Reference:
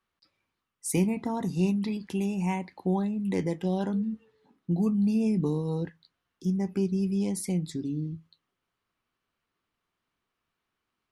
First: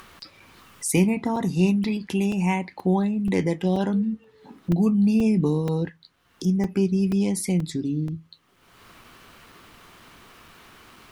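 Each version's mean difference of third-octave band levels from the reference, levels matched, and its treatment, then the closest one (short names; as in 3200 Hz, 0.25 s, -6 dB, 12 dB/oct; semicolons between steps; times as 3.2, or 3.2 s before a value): 1.5 dB: dynamic EQ 2400 Hz, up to +4 dB, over -53 dBFS, Q 1.3; upward compressor, threshold -32 dBFS; crackling interface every 0.48 s, samples 128, zero, from 0.4; gain +5.5 dB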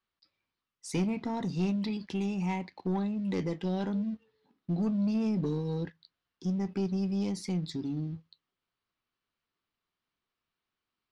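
3.5 dB: sample leveller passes 1; synth low-pass 4700 Hz, resonance Q 1.7; in parallel at -7 dB: soft clip -29 dBFS, distortion -9 dB; on the sum: gain -8 dB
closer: first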